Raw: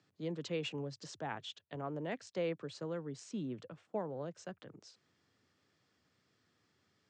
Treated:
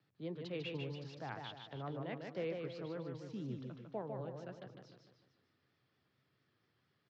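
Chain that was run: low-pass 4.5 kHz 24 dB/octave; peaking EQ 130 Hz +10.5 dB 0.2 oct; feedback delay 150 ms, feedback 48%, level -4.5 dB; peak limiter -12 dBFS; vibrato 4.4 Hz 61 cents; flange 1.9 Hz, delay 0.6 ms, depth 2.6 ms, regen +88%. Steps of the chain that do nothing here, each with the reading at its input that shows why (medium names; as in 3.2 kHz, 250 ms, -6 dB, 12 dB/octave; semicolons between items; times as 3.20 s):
peak limiter -12 dBFS: peak at its input -24.0 dBFS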